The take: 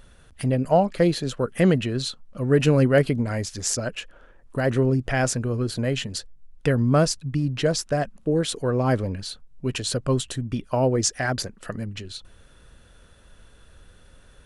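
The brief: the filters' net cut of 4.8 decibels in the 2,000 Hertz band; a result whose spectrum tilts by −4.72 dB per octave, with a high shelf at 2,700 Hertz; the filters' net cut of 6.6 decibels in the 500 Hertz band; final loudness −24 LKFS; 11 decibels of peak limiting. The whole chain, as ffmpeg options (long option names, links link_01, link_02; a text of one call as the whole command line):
ffmpeg -i in.wav -af "equalizer=frequency=500:width_type=o:gain=-8,equalizer=frequency=2000:width_type=o:gain=-8,highshelf=frequency=2700:gain=5,volume=2.5dB,alimiter=limit=-11.5dB:level=0:latency=1" out.wav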